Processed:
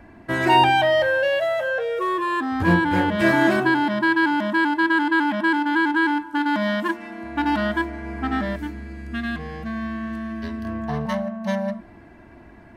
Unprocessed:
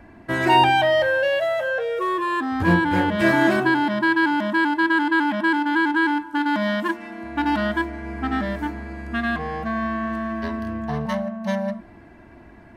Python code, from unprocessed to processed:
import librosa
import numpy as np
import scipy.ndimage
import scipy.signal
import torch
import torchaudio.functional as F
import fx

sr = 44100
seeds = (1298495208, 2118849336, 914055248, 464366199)

y = fx.peak_eq(x, sr, hz=850.0, db=-10.5, octaves=1.8, at=(8.56, 10.65))